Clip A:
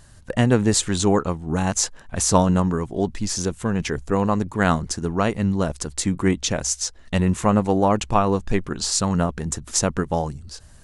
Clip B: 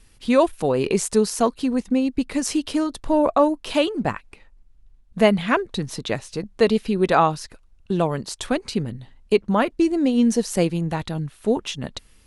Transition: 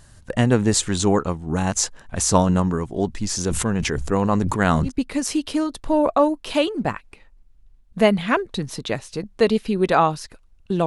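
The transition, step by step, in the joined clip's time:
clip A
0:03.29–0:04.92: level that may fall only so fast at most 27 dB per second
0:04.87: continue with clip B from 0:02.07, crossfade 0.10 s

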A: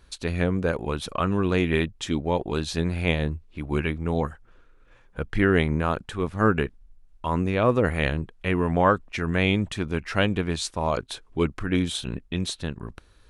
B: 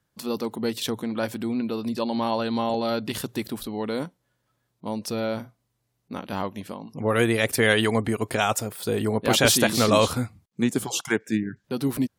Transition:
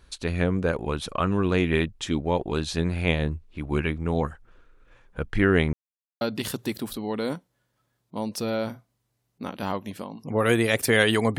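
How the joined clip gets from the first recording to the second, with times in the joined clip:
A
0:05.73–0:06.21: silence
0:06.21: continue with B from 0:02.91

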